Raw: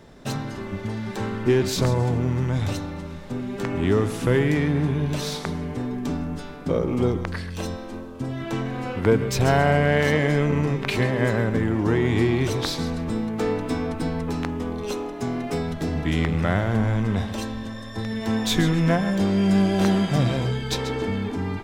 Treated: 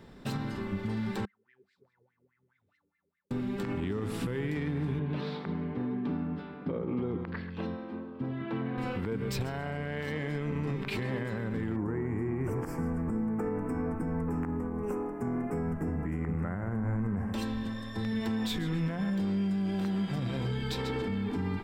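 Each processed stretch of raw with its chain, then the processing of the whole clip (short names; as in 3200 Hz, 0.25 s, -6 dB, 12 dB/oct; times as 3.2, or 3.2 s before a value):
1.25–3.31 passive tone stack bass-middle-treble 6-0-2 + wah 4.8 Hz 410–2100 Hz, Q 13
4.99–8.78 HPF 130 Hz + air absorption 350 m
11.76–17.34 Butterworth band-stop 3800 Hz, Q 0.64 + high shelf 6600 Hz -5 dB
whole clip: thirty-one-band EQ 200 Hz +5 dB, 630 Hz -6 dB, 6300 Hz -9 dB, 10000 Hz -5 dB; compressor, threshold -22 dBFS; limiter -20 dBFS; gain -4 dB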